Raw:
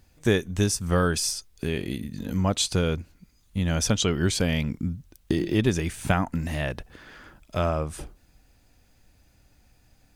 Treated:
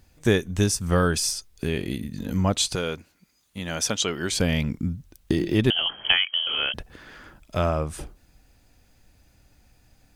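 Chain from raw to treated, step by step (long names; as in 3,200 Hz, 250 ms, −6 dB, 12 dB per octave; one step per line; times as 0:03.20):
0:02.75–0:04.32: high-pass filter 480 Hz 6 dB per octave
0:05.70–0:06.74: voice inversion scrambler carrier 3,200 Hz
level +1.5 dB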